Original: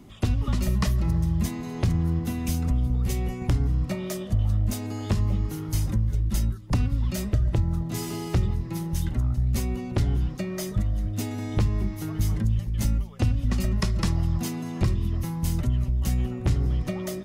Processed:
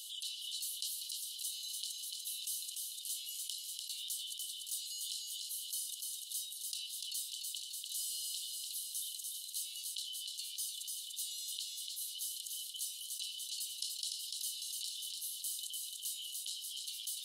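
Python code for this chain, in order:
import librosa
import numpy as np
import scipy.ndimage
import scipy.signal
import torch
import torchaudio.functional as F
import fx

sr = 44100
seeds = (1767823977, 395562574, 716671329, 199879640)

y = scipy.signal.sosfilt(scipy.signal.cheby1(6, 9, 2900.0, 'highpass', fs=sr, output='sos'), x)
y = fx.echo_feedback(y, sr, ms=294, feedback_pct=47, wet_db=-9.5)
y = fx.env_flatten(y, sr, amount_pct=70)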